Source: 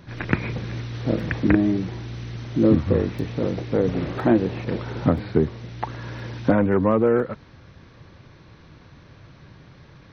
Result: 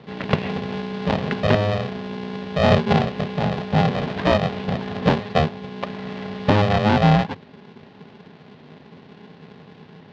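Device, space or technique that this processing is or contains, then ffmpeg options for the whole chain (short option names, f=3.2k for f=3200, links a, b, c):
ring modulator pedal into a guitar cabinet: -af "aeval=exprs='val(0)*sgn(sin(2*PI*310*n/s))':c=same,highpass=100,equalizer=f=100:t=q:w=4:g=6,equalizer=f=160:t=q:w=4:g=7,equalizer=f=260:t=q:w=4:g=6,equalizer=f=490:t=q:w=4:g=-3,equalizer=f=1.3k:t=q:w=4:g=-6,equalizer=f=2.2k:t=q:w=4:g=-3,lowpass=f=4.1k:w=0.5412,lowpass=f=4.1k:w=1.3066,volume=1.5dB"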